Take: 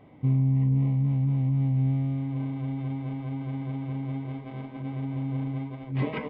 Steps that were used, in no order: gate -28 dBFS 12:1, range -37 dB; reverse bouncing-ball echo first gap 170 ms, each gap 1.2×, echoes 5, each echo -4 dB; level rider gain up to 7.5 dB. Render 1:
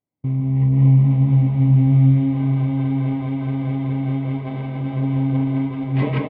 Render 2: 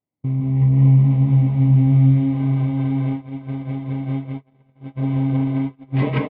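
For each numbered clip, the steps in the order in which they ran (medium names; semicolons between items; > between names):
level rider > reverse bouncing-ball echo > gate; reverse bouncing-ball echo > gate > level rider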